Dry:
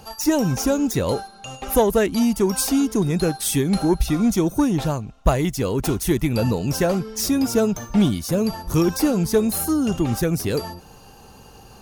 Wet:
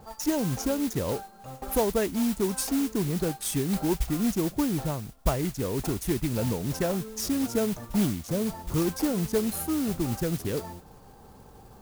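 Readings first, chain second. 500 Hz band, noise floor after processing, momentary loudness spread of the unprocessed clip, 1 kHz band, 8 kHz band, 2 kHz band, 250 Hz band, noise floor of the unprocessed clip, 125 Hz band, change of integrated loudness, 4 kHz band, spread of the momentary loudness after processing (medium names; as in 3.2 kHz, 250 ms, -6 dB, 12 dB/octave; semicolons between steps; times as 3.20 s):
-7.5 dB, -51 dBFS, 4 LU, -8.0 dB, -7.0 dB, -8.0 dB, -7.5 dB, -46 dBFS, -7.5 dB, -7.5 dB, -7.5 dB, 4 LU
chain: local Wiener filter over 15 samples; modulation noise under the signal 13 dB; in parallel at -2 dB: compression, threshold -29 dBFS, peak gain reduction 17.5 dB; on the sum: trim -9 dB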